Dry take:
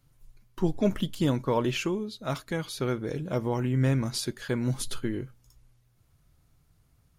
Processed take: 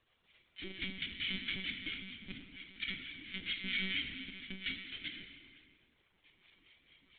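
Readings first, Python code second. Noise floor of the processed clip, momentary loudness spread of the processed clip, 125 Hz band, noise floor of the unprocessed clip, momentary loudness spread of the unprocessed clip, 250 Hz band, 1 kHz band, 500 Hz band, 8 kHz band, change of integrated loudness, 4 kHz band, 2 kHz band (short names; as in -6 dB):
-75 dBFS, 14 LU, -25.0 dB, -66 dBFS, 8 LU, -19.5 dB, -25.5 dB, -28.5 dB, under -40 dB, -10.5 dB, +0.5 dB, +1.0 dB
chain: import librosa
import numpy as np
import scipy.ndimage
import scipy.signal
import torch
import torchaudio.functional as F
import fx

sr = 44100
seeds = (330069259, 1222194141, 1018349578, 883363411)

y = fx.envelope_flatten(x, sr, power=0.1)
y = fx.recorder_agc(y, sr, target_db=-17.0, rise_db_per_s=6.3, max_gain_db=30)
y = scipy.signal.sosfilt(scipy.signal.butter(2, 49.0, 'highpass', fs=sr, output='sos'), y)
y = fx.peak_eq(y, sr, hz=450.0, db=-10.0, octaves=1.5)
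y = fx.level_steps(y, sr, step_db=14)
y = fx.vowel_filter(y, sr, vowel='i')
y = fx.harmonic_tremolo(y, sr, hz=4.4, depth_pct=100, crossover_hz=930.0)
y = fx.dmg_crackle(y, sr, seeds[0], per_s=120.0, level_db=-66.0)
y = fx.rev_plate(y, sr, seeds[1], rt60_s=2.0, hf_ratio=0.8, predelay_ms=0, drr_db=3.0)
y = fx.lpc_monotone(y, sr, seeds[2], pitch_hz=190.0, order=16)
y = F.gain(torch.from_numpy(y), 12.5).numpy()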